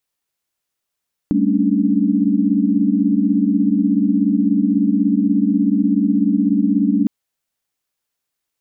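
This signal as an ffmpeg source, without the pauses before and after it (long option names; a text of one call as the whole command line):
ffmpeg -f lavfi -i "aevalsrc='0.119*(sin(2*PI*196*t)+sin(2*PI*220*t)+sin(2*PI*277.18*t)+sin(2*PI*293.66*t))':duration=5.76:sample_rate=44100" out.wav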